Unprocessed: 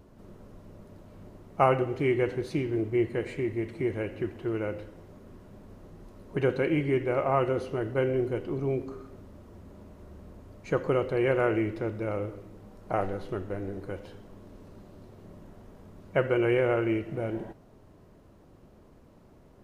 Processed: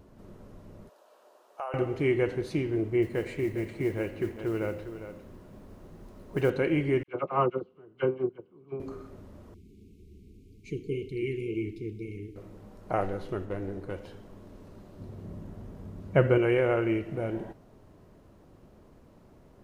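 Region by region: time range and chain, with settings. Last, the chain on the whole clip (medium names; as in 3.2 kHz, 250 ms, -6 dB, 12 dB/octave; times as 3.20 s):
0.89–1.74 s: high-pass 540 Hz 24 dB/octave + peaking EQ 2.1 kHz -12 dB 0.28 oct + compression 2.5:1, threshold -38 dBFS
3.02–6.50 s: modulation noise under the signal 31 dB + delay 404 ms -11 dB
7.03–8.80 s: gate -26 dBFS, range -25 dB + cabinet simulation 120–4000 Hz, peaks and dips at 180 Hz +9 dB, 390 Hz +4 dB, 620 Hz -5 dB, 1.1 kHz +6 dB, 1.9 kHz -10 dB + phase dispersion lows, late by 49 ms, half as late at 1.6 kHz
9.54–12.36 s: brick-wall FIR band-stop 460–2100 Hz + flange 1.9 Hz, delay 1 ms, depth 9.1 ms, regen -65%
13.45–13.99 s: self-modulated delay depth 0.094 ms + tape noise reduction on one side only decoder only
14.99–16.38 s: high-pass 43 Hz + bass shelf 270 Hz +11 dB
whole clip: none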